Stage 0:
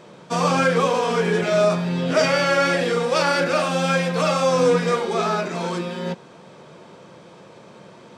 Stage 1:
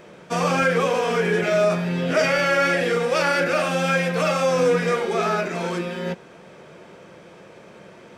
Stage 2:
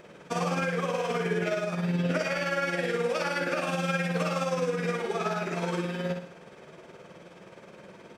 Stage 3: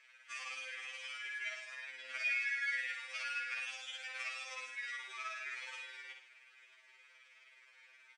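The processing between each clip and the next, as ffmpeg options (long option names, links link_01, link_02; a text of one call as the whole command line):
ffmpeg -i in.wav -filter_complex "[0:a]equalizer=frequency=125:width_type=o:width=1:gain=-10,equalizer=frequency=250:width_type=o:width=1:gain=-7,equalizer=frequency=500:width_type=o:width=1:gain=-4,equalizer=frequency=1000:width_type=o:width=1:gain=-10,equalizer=frequency=4000:width_type=o:width=1:gain=-10,equalizer=frequency=8000:width_type=o:width=1:gain=-8,asplit=2[link_01][link_02];[link_02]alimiter=limit=-21.5dB:level=0:latency=1,volume=-2dB[link_03];[link_01][link_03]amix=inputs=2:normalize=0,volume=3dB" out.wav
ffmpeg -i in.wav -af "acompressor=threshold=-22dB:ratio=6,tremolo=f=19:d=0.56,aecho=1:1:63|126|189|252|315:0.501|0.216|0.0927|0.0398|0.0171,volume=-2.5dB" out.wav
ffmpeg -i in.wav -af "highpass=frequency=2100:width_type=q:width=2.9,aresample=22050,aresample=44100,afftfilt=real='re*2.45*eq(mod(b,6),0)':imag='im*2.45*eq(mod(b,6),0)':win_size=2048:overlap=0.75,volume=-8dB" out.wav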